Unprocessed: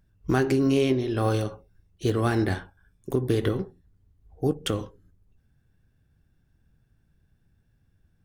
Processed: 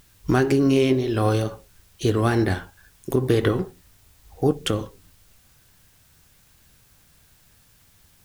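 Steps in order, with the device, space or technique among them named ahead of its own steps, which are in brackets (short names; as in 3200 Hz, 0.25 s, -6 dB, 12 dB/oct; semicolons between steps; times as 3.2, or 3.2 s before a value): 3.17–4.59 bell 1200 Hz +5 dB 2.2 oct; noise-reduction cassette on a plain deck (mismatched tape noise reduction encoder only; wow and flutter; white noise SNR 34 dB); gain +3.5 dB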